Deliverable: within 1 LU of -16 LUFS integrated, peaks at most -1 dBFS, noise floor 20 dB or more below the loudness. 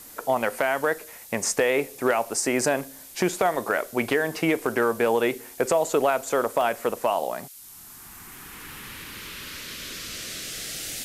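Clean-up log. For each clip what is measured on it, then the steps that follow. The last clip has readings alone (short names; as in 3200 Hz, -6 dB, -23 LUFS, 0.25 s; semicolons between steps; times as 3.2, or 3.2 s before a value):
dropouts 2; longest dropout 1.4 ms; noise floor -45 dBFS; noise floor target -46 dBFS; loudness -25.5 LUFS; peak -9.0 dBFS; loudness target -16.0 LUFS
-> interpolate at 0.93/6.61, 1.4 ms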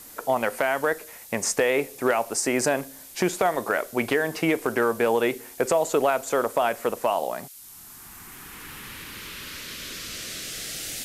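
dropouts 0; noise floor -45 dBFS; noise floor target -46 dBFS
-> noise print and reduce 6 dB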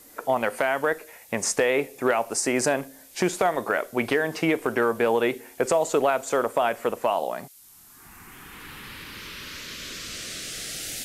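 noise floor -51 dBFS; loudness -25.5 LUFS; peak -9.0 dBFS; loudness target -16.0 LUFS
-> gain +9.5 dB; limiter -1 dBFS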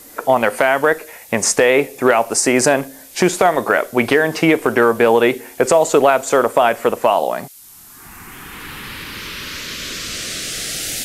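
loudness -16.0 LUFS; peak -1.0 dBFS; noise floor -41 dBFS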